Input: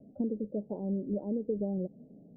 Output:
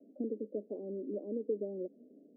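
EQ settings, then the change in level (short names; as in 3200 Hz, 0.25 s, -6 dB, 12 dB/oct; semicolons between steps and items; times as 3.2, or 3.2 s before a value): running mean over 49 samples; steep high-pass 270 Hz 36 dB/oct; +3.0 dB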